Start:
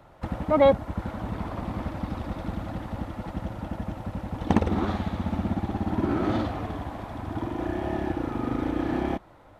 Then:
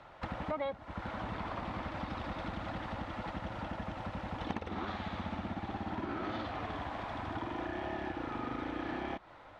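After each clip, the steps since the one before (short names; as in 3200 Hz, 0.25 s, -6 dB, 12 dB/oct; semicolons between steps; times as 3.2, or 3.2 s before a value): LPF 4200 Hz 12 dB/oct; tilt shelf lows -6.5 dB, about 680 Hz; compressor 6:1, threshold -34 dBFS, peak gain reduction 18 dB; gain -1 dB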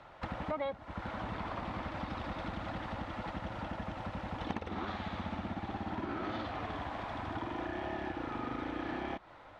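nothing audible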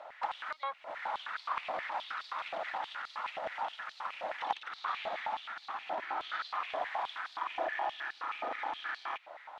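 stepped high-pass 9.5 Hz 640–4300 Hz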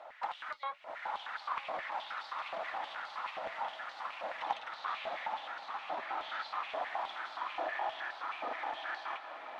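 flange 0.72 Hz, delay 2.5 ms, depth 7.7 ms, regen -52%; diffused feedback echo 1.089 s, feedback 56%, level -9 dB; gain +2 dB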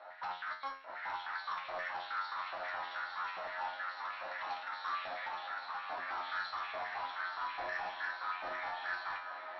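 overloaded stage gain 35.5 dB; rippled Chebyshev low-pass 5700 Hz, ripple 9 dB; resonator 90 Hz, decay 0.39 s, harmonics all, mix 90%; gain +14 dB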